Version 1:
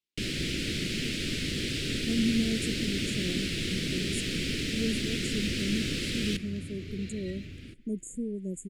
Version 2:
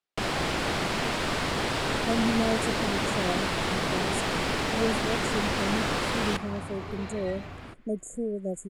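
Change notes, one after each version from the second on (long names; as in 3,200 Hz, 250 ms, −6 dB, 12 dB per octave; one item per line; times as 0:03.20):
master: remove Chebyshev band-stop filter 310–2,600 Hz, order 2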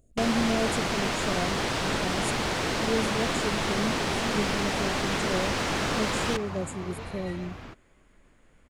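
speech: entry −1.90 s
master: add parametric band 6,200 Hz +4.5 dB 0.34 octaves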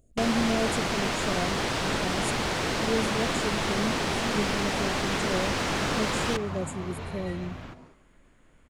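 reverb: on, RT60 0.55 s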